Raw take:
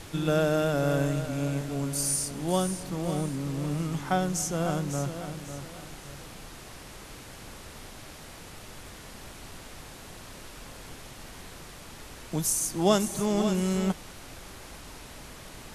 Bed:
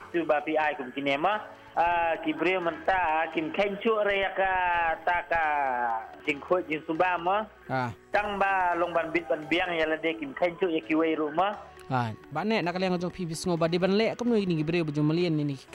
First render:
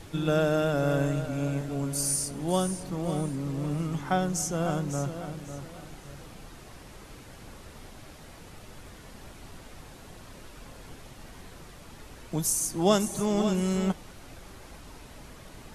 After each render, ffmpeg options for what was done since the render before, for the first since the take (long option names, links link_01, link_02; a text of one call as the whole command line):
ffmpeg -i in.wav -af "afftdn=noise_reduction=6:noise_floor=-46" out.wav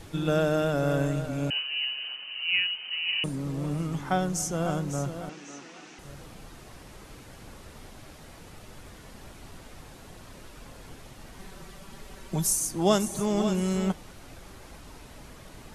ffmpeg -i in.wav -filter_complex "[0:a]asettb=1/sr,asplit=3[link_01][link_02][link_03];[link_01]atrim=end=1.504[link_04];[link_02]atrim=start=1.5:end=3.24,asetpts=PTS-STARTPTS,afade=type=in:duration=0.004:curve=qsin,afade=type=out:start_time=1.736:duration=0.004:curve=qsin,lowpass=frequency=2600:width_type=q:width=0.5098,lowpass=frequency=2600:width_type=q:width=0.6013,lowpass=frequency=2600:width_type=q:width=0.9,lowpass=frequency=2600:width_type=q:width=2.563,afreqshift=-3100[link_05];[link_03]atrim=start=3.236[link_06];[link_04][link_05]acrossfade=duration=0.004:curve1=hsin:curve2=qsin[link_07];[link_07][link_06]acrossfade=duration=0.004:curve1=qsin:curve2=hsin,asettb=1/sr,asplit=3[link_08][link_09][link_10];[link_08]atrim=end=5.294[link_11];[link_09]atrim=start=5.29:end=5.99,asetpts=PTS-STARTPTS,afade=type=in:duration=0.004:curve=qsin,afade=type=out:start_time=0.696:duration=0.004:curve=qsin,highpass=frequency=230:width=0.5412,highpass=frequency=230:width=1.3066,equalizer=frequency=580:width_type=q:width=4:gain=-10,equalizer=frequency=1800:width_type=q:width=4:gain=4,equalizer=frequency=2600:width_type=q:width=4:gain=7,equalizer=frequency=5900:width_type=q:width=4:gain=7,lowpass=frequency=7500:width=0.5412,lowpass=frequency=7500:width=1.3066[link_12];[link_10]atrim=start=5.986[link_13];[link_11][link_12]acrossfade=duration=0.004:curve1=hsin:curve2=qsin[link_14];[link_14][link_13]acrossfade=duration=0.004:curve1=qsin:curve2=hsin,asettb=1/sr,asplit=3[link_15][link_16][link_17];[link_15]atrim=end=11.394[link_18];[link_16]atrim=start=11.39:end=12.56,asetpts=PTS-STARTPTS,afade=type=in:duration=0.004:curve=qsin,afade=type=out:start_time=1.166:duration=0.004:curve=qsin,aecho=1:1:5.2:0.65,atrim=end_sample=51597[link_19];[link_17]atrim=start=12.556[link_20];[link_18][link_19]acrossfade=duration=0.004:curve1=hsin:curve2=qsin[link_21];[link_21][link_20]acrossfade=duration=0.004:curve1=qsin:curve2=hsin" out.wav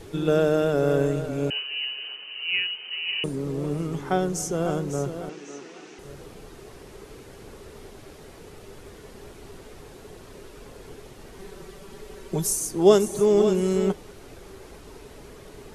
ffmpeg -i in.wav -af "equalizer=frequency=410:width_type=o:width=0.45:gain=13.5" out.wav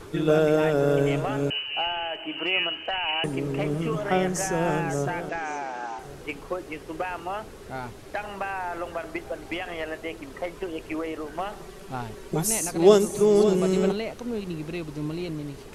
ffmpeg -i in.wav -i bed.wav -filter_complex "[1:a]volume=-6dB[link_01];[0:a][link_01]amix=inputs=2:normalize=0" out.wav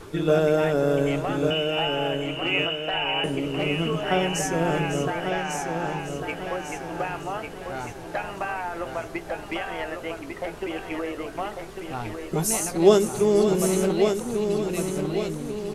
ffmpeg -i in.wav -filter_complex "[0:a]asplit=2[link_01][link_02];[link_02]adelay=18,volume=-12dB[link_03];[link_01][link_03]amix=inputs=2:normalize=0,aecho=1:1:1148|2296|3444|4592|5740:0.501|0.226|0.101|0.0457|0.0206" out.wav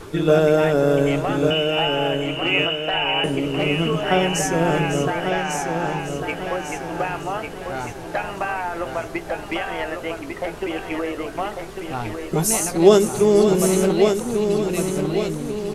ffmpeg -i in.wav -af "volume=4.5dB,alimiter=limit=-1dB:level=0:latency=1" out.wav